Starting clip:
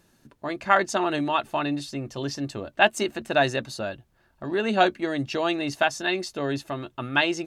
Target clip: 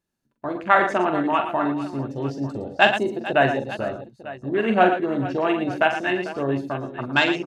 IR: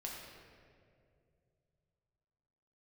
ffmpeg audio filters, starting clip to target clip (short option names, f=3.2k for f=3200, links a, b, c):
-af "afwtdn=0.0316,agate=range=-7dB:threshold=-44dB:ratio=16:detection=peak,aecho=1:1:44|109|113|446|898:0.447|0.141|0.335|0.178|0.141,volume=2.5dB"